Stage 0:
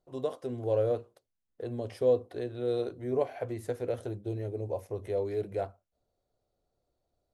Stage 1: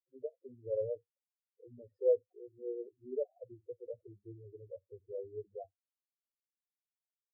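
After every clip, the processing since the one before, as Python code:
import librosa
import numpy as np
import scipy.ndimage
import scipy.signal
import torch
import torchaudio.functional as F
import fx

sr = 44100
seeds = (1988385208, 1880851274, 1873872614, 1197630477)

y = fx.power_curve(x, sr, exponent=2.0)
y = fx.spec_topn(y, sr, count=4)
y = F.gain(torch.from_numpy(y), 1.0).numpy()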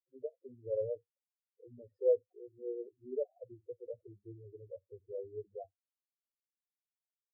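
y = x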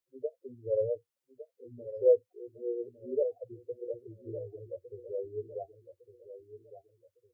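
y = fx.echo_feedback(x, sr, ms=1157, feedback_pct=34, wet_db=-12.0)
y = F.gain(torch.from_numpy(y), 5.5).numpy()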